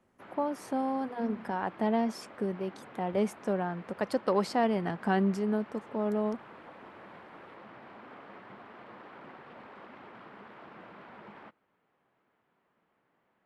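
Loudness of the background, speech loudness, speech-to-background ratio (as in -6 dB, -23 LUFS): -50.0 LUFS, -32.0 LUFS, 18.0 dB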